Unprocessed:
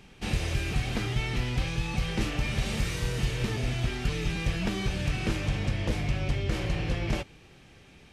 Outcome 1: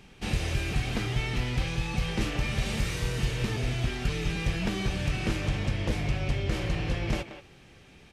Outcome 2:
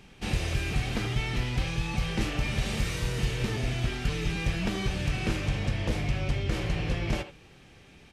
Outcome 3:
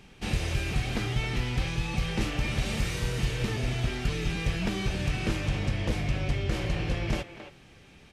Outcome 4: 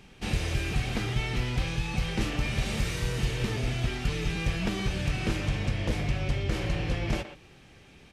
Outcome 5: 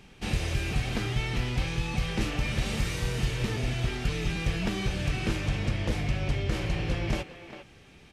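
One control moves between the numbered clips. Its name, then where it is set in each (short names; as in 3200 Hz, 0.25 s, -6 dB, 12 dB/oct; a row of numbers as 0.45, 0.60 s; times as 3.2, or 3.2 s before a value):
speakerphone echo, time: 180, 80, 270, 120, 400 ms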